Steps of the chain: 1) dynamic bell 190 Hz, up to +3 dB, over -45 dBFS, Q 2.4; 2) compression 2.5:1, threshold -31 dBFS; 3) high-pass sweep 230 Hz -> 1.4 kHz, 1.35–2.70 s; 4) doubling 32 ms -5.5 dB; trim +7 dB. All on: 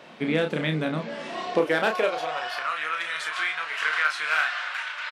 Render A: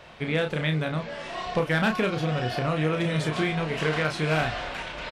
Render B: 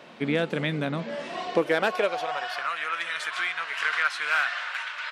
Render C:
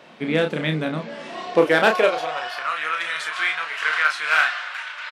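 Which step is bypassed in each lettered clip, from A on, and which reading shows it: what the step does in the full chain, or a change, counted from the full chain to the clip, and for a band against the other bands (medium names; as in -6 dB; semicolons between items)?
3, 125 Hz band +9.5 dB; 4, loudness change -1.0 LU; 2, momentary loudness spread change +5 LU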